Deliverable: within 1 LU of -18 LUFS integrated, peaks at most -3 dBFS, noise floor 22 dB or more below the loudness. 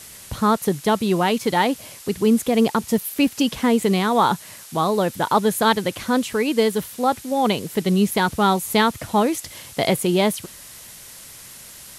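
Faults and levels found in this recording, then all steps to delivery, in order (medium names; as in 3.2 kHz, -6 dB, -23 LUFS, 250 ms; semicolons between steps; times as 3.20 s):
noise floor -42 dBFS; noise floor target -43 dBFS; loudness -20.5 LUFS; peak level -6.0 dBFS; loudness target -18.0 LUFS
-> noise reduction 6 dB, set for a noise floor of -42 dBFS; trim +2.5 dB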